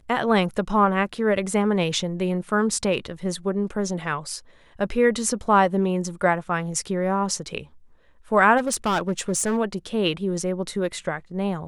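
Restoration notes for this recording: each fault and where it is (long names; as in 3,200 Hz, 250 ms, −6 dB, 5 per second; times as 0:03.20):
0:08.57–0:09.58: clipping −18.5 dBFS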